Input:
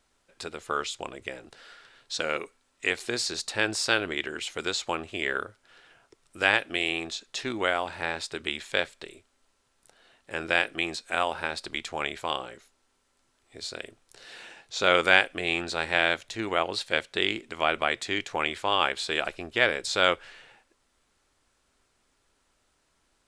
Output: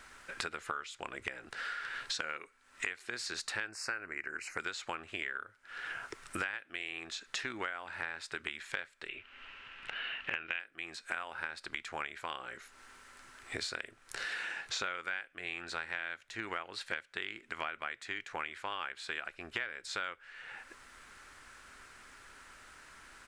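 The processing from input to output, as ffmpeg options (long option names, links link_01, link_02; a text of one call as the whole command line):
ffmpeg -i in.wav -filter_complex "[0:a]asettb=1/sr,asplit=3[link_01][link_02][link_03];[link_01]atrim=end=3.694[link_04];[link_02]atrim=start=3.69:end=4.6,asetpts=PTS-STARTPTS,afade=type=in:duration=0.004:curve=qsin,afade=type=out:start_time=0.906:duration=0.004:curve=qsin,asuperstop=centerf=3400:order=4:qfactor=1.7[link_05];[link_03]atrim=start=4.596[link_06];[link_04][link_05]acrossfade=duration=0.004:curve1=hsin:curve2=qsin[link_07];[link_07][link_06]acrossfade=duration=0.004:curve1=qsin:curve2=hsin,asettb=1/sr,asplit=3[link_08][link_09][link_10];[link_08]atrim=end=9.084[link_11];[link_09]atrim=start=9.08:end=10.6,asetpts=PTS-STARTPTS,afade=type=in:duration=0.004:curve=qsin,afade=type=out:start_time=1.516:duration=0.004:curve=qsin,lowpass=frequency=2800:width_type=q:width=5.8[link_12];[link_10]atrim=start=10.596[link_13];[link_11][link_12]acrossfade=duration=0.004:curve1=hsin:curve2=qsin[link_14];[link_14][link_13]acrossfade=duration=0.004:curve1=qsin:curve2=hsin,firequalizer=gain_entry='entry(660,0);entry(1500,13);entry(3400,2)':delay=0.05:min_phase=1,acompressor=threshold=-46dB:ratio=12,volume=10dB" out.wav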